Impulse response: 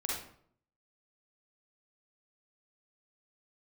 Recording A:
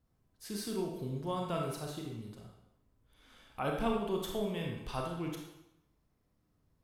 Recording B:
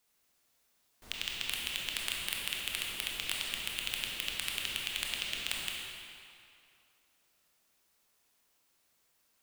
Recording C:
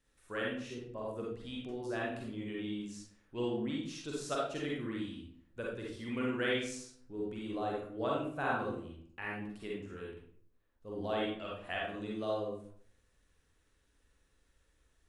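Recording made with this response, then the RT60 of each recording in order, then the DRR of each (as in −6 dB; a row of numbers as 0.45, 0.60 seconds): C; 0.85, 2.5, 0.60 seconds; 0.0, −3.0, −4.0 decibels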